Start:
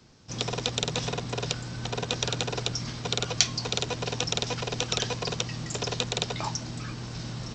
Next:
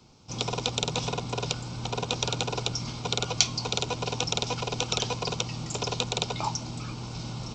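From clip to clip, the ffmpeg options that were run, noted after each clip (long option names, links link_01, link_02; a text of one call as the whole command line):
ffmpeg -i in.wav -af "superequalizer=9b=1.58:11b=0.316" out.wav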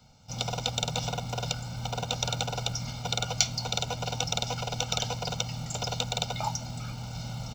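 ffmpeg -i in.wav -af "aecho=1:1:1.4:0.87,acrusher=bits=6:mode=log:mix=0:aa=0.000001,volume=-4dB" out.wav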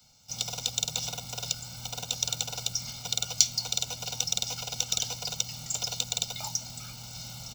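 ffmpeg -i in.wav -filter_complex "[0:a]acrossover=split=150|530|3100[link_01][link_02][link_03][link_04];[link_03]alimiter=level_in=3dB:limit=-24dB:level=0:latency=1:release=146,volume=-3dB[link_05];[link_01][link_02][link_05][link_04]amix=inputs=4:normalize=0,crystalizer=i=6:c=0,volume=-9.5dB" out.wav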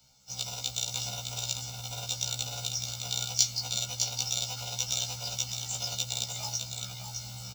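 ffmpeg -i in.wav -filter_complex "[0:a]asplit=2[link_01][link_02];[link_02]aecho=0:1:609:0.531[link_03];[link_01][link_03]amix=inputs=2:normalize=0,afftfilt=real='re*1.73*eq(mod(b,3),0)':imag='im*1.73*eq(mod(b,3),0)':win_size=2048:overlap=0.75" out.wav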